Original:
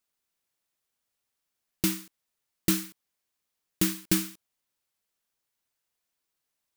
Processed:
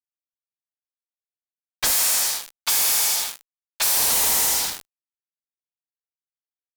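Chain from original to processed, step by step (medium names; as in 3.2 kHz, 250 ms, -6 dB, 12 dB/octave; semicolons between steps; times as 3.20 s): spectral sustain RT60 1.44 s; tone controls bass -2 dB, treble -8 dB; level-controlled noise filter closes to 1.7 kHz, open at -22.5 dBFS; spectral gate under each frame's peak -30 dB weak; feedback delay 80 ms, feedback 54%, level -7 dB; waveshaping leveller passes 3; fuzz box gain 62 dB, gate -54 dBFS; 1.90–3.97 s: bass shelf 420 Hz -11 dB; trim -5 dB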